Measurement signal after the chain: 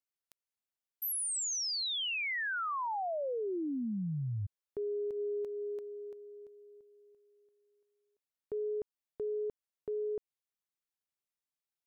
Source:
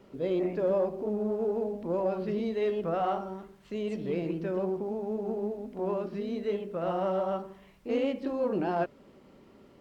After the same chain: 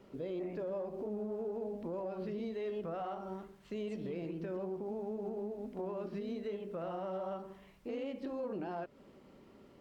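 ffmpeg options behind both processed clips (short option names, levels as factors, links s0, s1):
-af "alimiter=level_in=1.78:limit=0.0631:level=0:latency=1:release=178,volume=0.562,volume=0.708"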